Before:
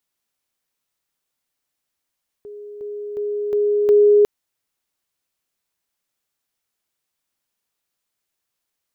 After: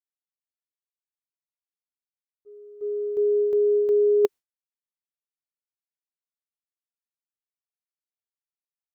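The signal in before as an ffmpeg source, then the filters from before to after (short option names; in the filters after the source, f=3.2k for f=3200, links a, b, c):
-f lavfi -i "aevalsrc='pow(10,(-33+6*floor(t/0.36))/20)*sin(2*PI*414*t)':d=1.8:s=44100"
-af "equalizer=f=410:w=4.4:g=6.5,agate=range=-33dB:threshold=-20dB:ratio=3:detection=peak,areverse,acompressor=threshold=-19dB:ratio=6,areverse"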